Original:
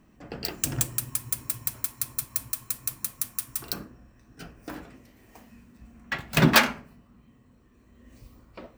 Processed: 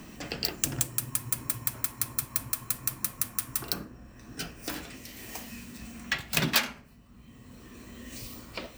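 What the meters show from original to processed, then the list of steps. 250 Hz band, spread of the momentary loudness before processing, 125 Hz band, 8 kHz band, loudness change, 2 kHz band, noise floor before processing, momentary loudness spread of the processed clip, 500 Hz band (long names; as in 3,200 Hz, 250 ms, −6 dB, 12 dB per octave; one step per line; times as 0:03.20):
−7.5 dB, 22 LU, −6.5 dB, −0.5 dB, −4.0 dB, −5.5 dB, −59 dBFS, 18 LU, −7.0 dB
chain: multiband upward and downward compressor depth 70%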